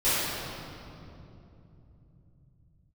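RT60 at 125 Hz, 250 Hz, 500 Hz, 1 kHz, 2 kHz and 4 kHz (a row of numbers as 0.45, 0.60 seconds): can't be measured, 4.8 s, 3.3 s, 2.6 s, 2.0 s, 1.8 s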